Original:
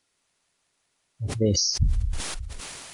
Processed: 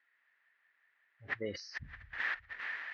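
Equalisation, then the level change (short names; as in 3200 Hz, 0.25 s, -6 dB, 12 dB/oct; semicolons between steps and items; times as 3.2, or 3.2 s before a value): band-pass 1800 Hz, Q 8.4; air absorption 310 m; +16.5 dB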